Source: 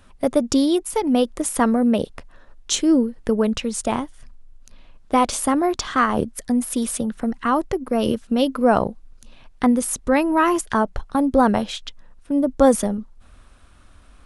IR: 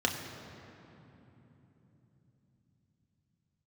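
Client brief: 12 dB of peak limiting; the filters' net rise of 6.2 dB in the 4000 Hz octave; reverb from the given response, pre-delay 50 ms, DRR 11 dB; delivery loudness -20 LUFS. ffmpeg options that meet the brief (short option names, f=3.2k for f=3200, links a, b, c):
-filter_complex "[0:a]equalizer=f=4k:t=o:g=8,alimiter=limit=-15dB:level=0:latency=1,asplit=2[a][b];[1:a]atrim=start_sample=2205,adelay=50[c];[b][c]afir=irnorm=-1:irlink=0,volume=-20dB[d];[a][d]amix=inputs=2:normalize=0,volume=4dB"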